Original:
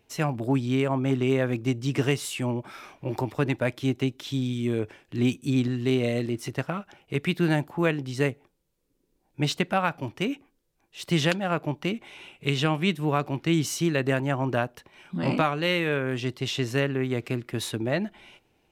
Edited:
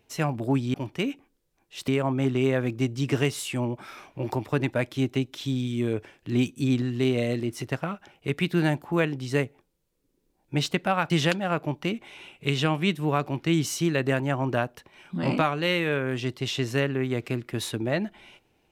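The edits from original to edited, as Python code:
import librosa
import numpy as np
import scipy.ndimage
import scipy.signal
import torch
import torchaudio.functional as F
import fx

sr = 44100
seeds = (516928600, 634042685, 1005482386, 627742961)

y = fx.edit(x, sr, fx.move(start_s=9.96, length_s=1.14, to_s=0.74), tone=tone)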